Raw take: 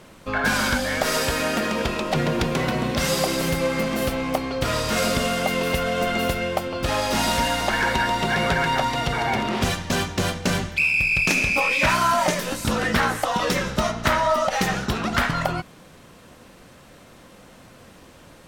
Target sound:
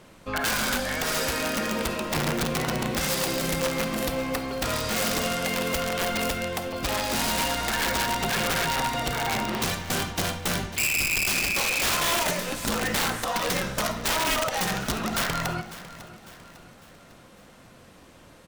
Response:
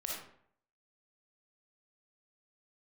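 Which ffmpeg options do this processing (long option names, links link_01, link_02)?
-filter_complex "[0:a]aeval=exprs='(mod(5.62*val(0)+1,2)-1)/5.62':channel_layout=same,aecho=1:1:551|1102|1653|2204:0.158|0.0729|0.0335|0.0154,asplit=2[link_01][link_02];[1:a]atrim=start_sample=2205,asetrate=48510,aresample=44100[link_03];[link_02][link_03]afir=irnorm=-1:irlink=0,volume=-8dB[link_04];[link_01][link_04]amix=inputs=2:normalize=0,volume=-6dB"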